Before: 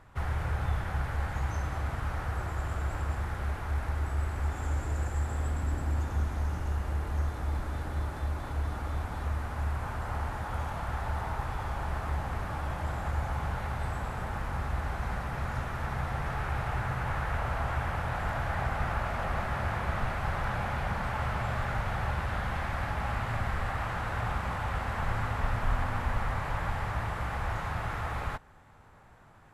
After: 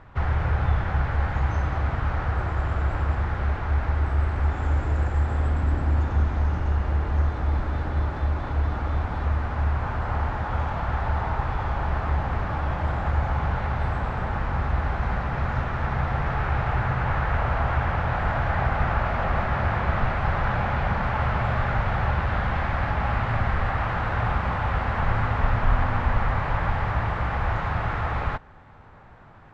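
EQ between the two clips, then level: distance through air 180 m; +8.0 dB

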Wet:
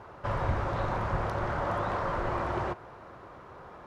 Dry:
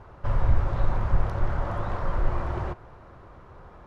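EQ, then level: high-pass 260 Hz 6 dB/octave; +3.5 dB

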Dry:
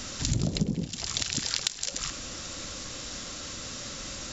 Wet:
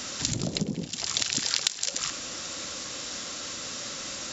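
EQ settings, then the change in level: high-pass 290 Hz 6 dB/octave; +3.0 dB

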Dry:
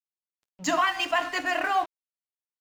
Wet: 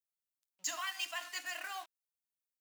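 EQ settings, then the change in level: differentiator; -2.0 dB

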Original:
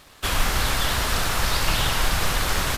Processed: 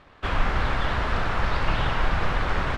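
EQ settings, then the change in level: low-pass 2 kHz 12 dB/octave; 0.0 dB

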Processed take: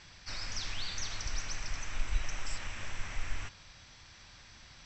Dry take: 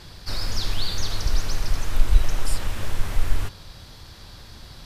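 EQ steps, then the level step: rippled Chebyshev low-pass 7.9 kHz, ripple 9 dB; bass shelf 230 Hz -5 dB; peaking EQ 420 Hz -5.5 dB 0.72 oct; -2.0 dB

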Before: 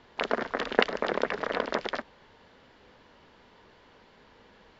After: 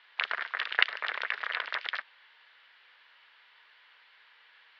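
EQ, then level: Butterworth band-pass 2.8 kHz, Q 0.77; distance through air 320 m; treble shelf 2.7 kHz +9.5 dB; +4.0 dB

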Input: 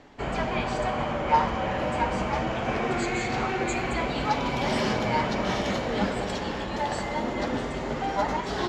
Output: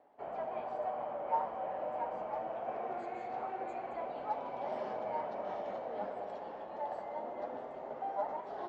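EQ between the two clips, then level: band-pass filter 680 Hz, Q 2.7; -6.0 dB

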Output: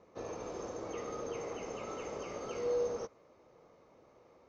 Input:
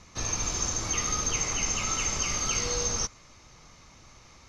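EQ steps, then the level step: band-pass filter 480 Hz, Q 2.7; +4.5 dB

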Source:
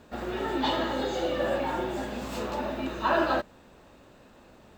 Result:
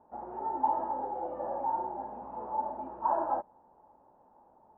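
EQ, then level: four-pole ladder low-pass 920 Hz, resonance 80%; bass shelf 170 Hz -8 dB; 0.0 dB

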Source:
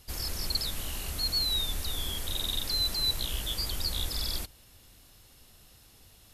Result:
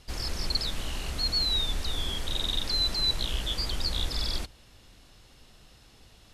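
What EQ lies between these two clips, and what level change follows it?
distance through air 71 m; peaking EQ 86 Hz -7.5 dB 0.31 oct; +4.0 dB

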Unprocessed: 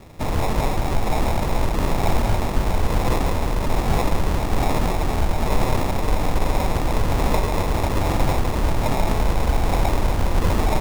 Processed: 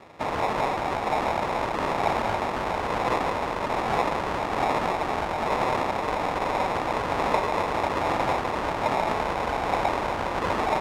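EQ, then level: band-pass filter 1.2 kHz, Q 0.6; +2.5 dB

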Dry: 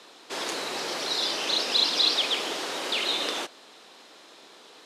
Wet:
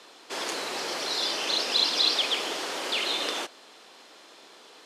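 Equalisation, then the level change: bass shelf 170 Hz -6 dB; band-stop 3.8 kHz, Q 22; 0.0 dB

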